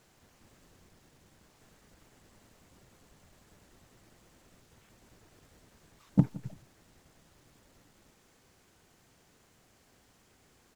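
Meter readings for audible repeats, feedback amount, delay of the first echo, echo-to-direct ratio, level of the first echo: 2, 29%, 0.168 s, -19.5 dB, -20.0 dB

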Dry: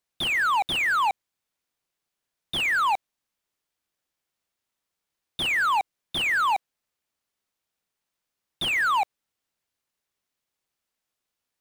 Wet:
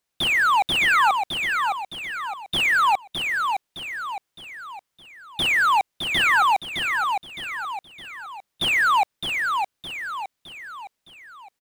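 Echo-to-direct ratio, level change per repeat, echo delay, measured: -4.0 dB, -7.0 dB, 0.613 s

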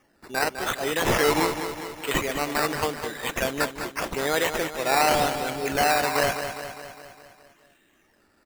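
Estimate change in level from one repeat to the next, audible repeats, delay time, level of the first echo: -4.5 dB, 6, 0.204 s, -9.0 dB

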